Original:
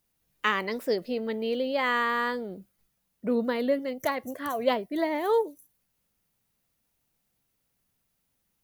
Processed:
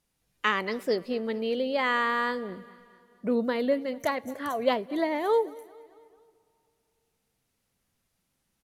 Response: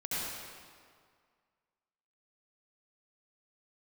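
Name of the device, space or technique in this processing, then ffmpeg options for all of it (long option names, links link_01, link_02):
ducked reverb: -filter_complex "[0:a]lowpass=11000,aecho=1:1:222|444|666|888:0.0794|0.0421|0.0223|0.0118,asplit=3[link_01][link_02][link_03];[1:a]atrim=start_sample=2205[link_04];[link_02][link_04]afir=irnorm=-1:irlink=0[link_05];[link_03]apad=whole_len=419918[link_06];[link_05][link_06]sidechaincompress=threshold=-48dB:ratio=5:attack=16:release=1110,volume=-10dB[link_07];[link_01][link_07]amix=inputs=2:normalize=0"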